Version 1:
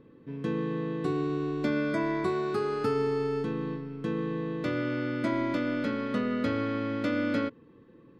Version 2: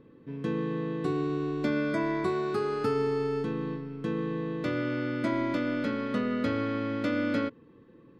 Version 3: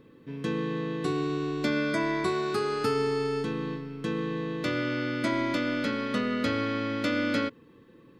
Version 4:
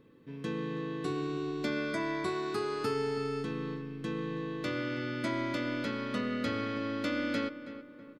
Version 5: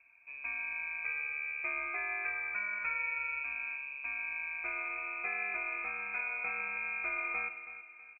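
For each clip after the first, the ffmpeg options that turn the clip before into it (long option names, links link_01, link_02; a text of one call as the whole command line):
ffmpeg -i in.wav -af anull out.wav
ffmpeg -i in.wav -af "highshelf=frequency=2200:gain=11" out.wav
ffmpeg -i in.wav -filter_complex "[0:a]asplit=2[link_01][link_02];[link_02]adelay=324,lowpass=frequency=2100:poles=1,volume=-12dB,asplit=2[link_03][link_04];[link_04]adelay=324,lowpass=frequency=2100:poles=1,volume=0.47,asplit=2[link_05][link_06];[link_06]adelay=324,lowpass=frequency=2100:poles=1,volume=0.47,asplit=2[link_07][link_08];[link_08]adelay=324,lowpass=frequency=2100:poles=1,volume=0.47,asplit=2[link_09][link_10];[link_10]adelay=324,lowpass=frequency=2100:poles=1,volume=0.47[link_11];[link_01][link_03][link_05][link_07][link_09][link_11]amix=inputs=6:normalize=0,volume=-5.5dB" out.wav
ffmpeg -i in.wav -filter_complex "[0:a]asplit=2[link_01][link_02];[link_02]adelay=151.6,volume=-17dB,highshelf=frequency=4000:gain=-3.41[link_03];[link_01][link_03]amix=inputs=2:normalize=0,lowpass=frequency=2300:width_type=q:width=0.5098,lowpass=frequency=2300:width_type=q:width=0.6013,lowpass=frequency=2300:width_type=q:width=0.9,lowpass=frequency=2300:width_type=q:width=2.563,afreqshift=-2700,volume=-3.5dB" out.wav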